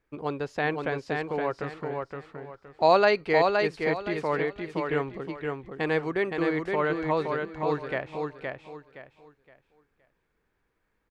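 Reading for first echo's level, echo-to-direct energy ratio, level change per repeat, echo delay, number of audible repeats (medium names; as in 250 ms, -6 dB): -4.0 dB, -3.5 dB, -11.0 dB, 518 ms, 3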